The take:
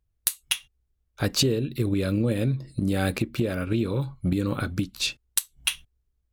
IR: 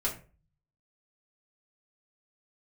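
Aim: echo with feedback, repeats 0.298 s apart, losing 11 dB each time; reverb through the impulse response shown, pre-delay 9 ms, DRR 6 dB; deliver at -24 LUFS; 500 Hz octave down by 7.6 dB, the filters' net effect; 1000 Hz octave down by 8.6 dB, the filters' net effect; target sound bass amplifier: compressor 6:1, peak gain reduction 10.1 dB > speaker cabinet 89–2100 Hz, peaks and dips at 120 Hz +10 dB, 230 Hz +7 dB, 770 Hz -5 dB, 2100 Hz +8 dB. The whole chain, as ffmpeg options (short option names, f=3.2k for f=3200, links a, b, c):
-filter_complex "[0:a]equalizer=f=500:t=o:g=-9,equalizer=f=1k:t=o:g=-8,aecho=1:1:298|596|894:0.282|0.0789|0.0221,asplit=2[a][b];[1:a]atrim=start_sample=2205,adelay=9[c];[b][c]afir=irnorm=-1:irlink=0,volume=-11.5dB[d];[a][d]amix=inputs=2:normalize=0,acompressor=threshold=-27dB:ratio=6,highpass=f=89:w=0.5412,highpass=f=89:w=1.3066,equalizer=f=120:t=q:w=4:g=10,equalizer=f=230:t=q:w=4:g=7,equalizer=f=770:t=q:w=4:g=-5,equalizer=f=2.1k:t=q:w=4:g=8,lowpass=f=2.1k:w=0.5412,lowpass=f=2.1k:w=1.3066,volume=3.5dB"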